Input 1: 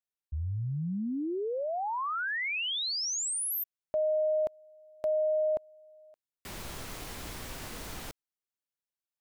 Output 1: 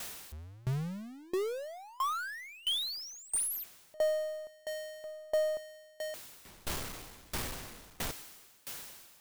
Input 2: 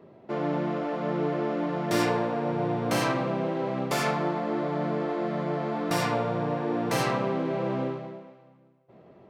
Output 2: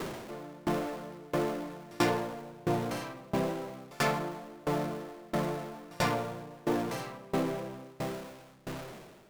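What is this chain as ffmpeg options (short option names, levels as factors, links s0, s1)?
-af "aeval=exprs='val(0)+0.5*0.0355*sgn(val(0))':c=same,aeval=exprs='0.316*(cos(1*acos(clip(val(0)/0.316,-1,1)))-cos(1*PI/2))+0.00501*(cos(8*acos(clip(val(0)/0.316,-1,1)))-cos(8*PI/2))':c=same,aeval=exprs='val(0)*pow(10,-27*if(lt(mod(1.5*n/s,1),2*abs(1.5)/1000),1-mod(1.5*n/s,1)/(2*abs(1.5)/1000),(mod(1.5*n/s,1)-2*abs(1.5)/1000)/(1-2*abs(1.5)/1000))/20)':c=same,volume=0.891"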